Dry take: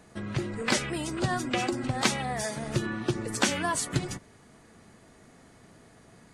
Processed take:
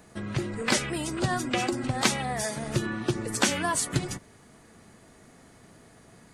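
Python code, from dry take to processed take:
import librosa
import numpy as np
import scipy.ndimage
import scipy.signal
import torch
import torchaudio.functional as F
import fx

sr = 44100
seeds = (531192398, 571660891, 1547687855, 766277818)

y = fx.high_shelf(x, sr, hz=12000.0, db=8.5)
y = F.gain(torch.from_numpy(y), 1.0).numpy()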